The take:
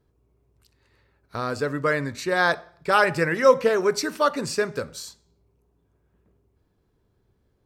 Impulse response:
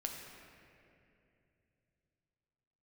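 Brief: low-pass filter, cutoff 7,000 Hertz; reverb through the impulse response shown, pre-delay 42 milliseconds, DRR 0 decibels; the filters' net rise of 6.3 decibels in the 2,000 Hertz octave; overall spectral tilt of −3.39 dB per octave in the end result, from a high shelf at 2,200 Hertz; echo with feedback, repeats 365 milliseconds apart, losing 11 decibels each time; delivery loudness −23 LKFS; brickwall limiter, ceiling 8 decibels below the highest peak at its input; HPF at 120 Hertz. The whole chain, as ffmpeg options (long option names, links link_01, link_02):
-filter_complex "[0:a]highpass=120,lowpass=7000,equalizer=frequency=2000:width_type=o:gain=5.5,highshelf=frequency=2200:gain=6,alimiter=limit=-10dB:level=0:latency=1,aecho=1:1:365|730|1095:0.282|0.0789|0.0221,asplit=2[link_01][link_02];[1:a]atrim=start_sample=2205,adelay=42[link_03];[link_02][link_03]afir=irnorm=-1:irlink=0,volume=0dB[link_04];[link_01][link_04]amix=inputs=2:normalize=0,volume=-3.5dB"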